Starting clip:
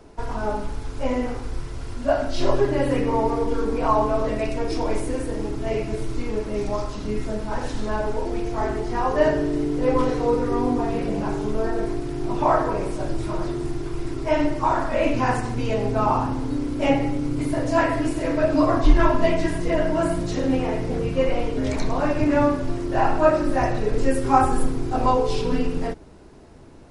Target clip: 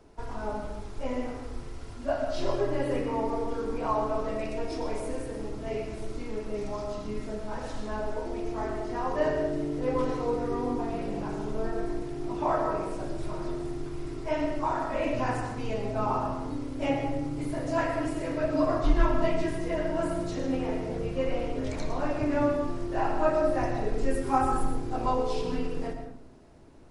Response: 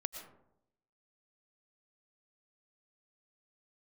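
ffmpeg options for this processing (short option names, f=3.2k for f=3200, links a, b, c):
-filter_complex "[1:a]atrim=start_sample=2205[a];[0:a][a]afir=irnorm=-1:irlink=0,volume=-7dB"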